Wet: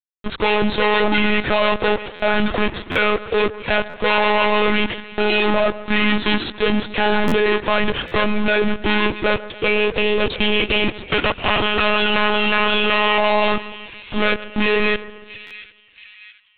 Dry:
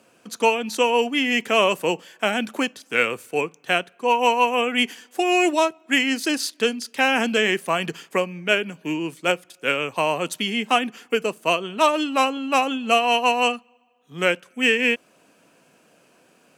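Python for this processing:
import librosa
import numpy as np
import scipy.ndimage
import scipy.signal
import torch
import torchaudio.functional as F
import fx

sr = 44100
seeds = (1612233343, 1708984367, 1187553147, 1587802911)

y = fx.spec_clip(x, sr, under_db=19, at=(10.52, 13.17), fade=0.02)
y = scipy.signal.sosfilt(scipy.signal.butter(2, 64.0, 'highpass', fs=sr, output='sos'), y)
y = fx.env_lowpass_down(y, sr, base_hz=2800.0, full_db=-18.0)
y = fx.spec_erase(y, sr, start_s=9.44, length_s=1.66, low_hz=550.0, high_hz=2200.0)
y = fx.leveller(y, sr, passes=2)
y = fx.rider(y, sr, range_db=10, speed_s=2.0)
y = fx.fuzz(y, sr, gain_db=34.0, gate_db=-37.0)
y = fx.echo_split(y, sr, split_hz=1900.0, low_ms=140, high_ms=682, feedback_pct=52, wet_db=-15.5)
y = fx.lpc_monotone(y, sr, seeds[0], pitch_hz=210.0, order=16)
y = fx.buffer_glitch(y, sr, at_s=(2.15, 2.91, 3.89, 7.27, 8.07, 15.46), block=512, repeats=3)
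y = y * 10.0 ** (-2.0 / 20.0)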